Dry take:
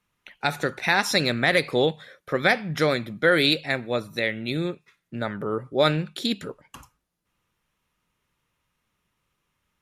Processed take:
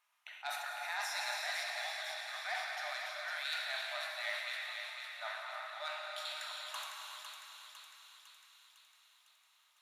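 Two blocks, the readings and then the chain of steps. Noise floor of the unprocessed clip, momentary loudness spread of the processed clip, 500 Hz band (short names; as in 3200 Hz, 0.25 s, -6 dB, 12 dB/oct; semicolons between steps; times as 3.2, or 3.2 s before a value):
-77 dBFS, 16 LU, -24.0 dB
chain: reverse; compressor 12:1, threshold -33 dBFS, peak gain reduction 19.5 dB; reverse; soft clip -27 dBFS, distortion -19 dB; brick-wall FIR high-pass 600 Hz; on a send: thinning echo 0.504 s, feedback 62%, high-pass 1000 Hz, level -5 dB; on the sum: non-linear reverb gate 0.43 s flat, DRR -1.5 dB; sustainer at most 38 dB/s; gain -2 dB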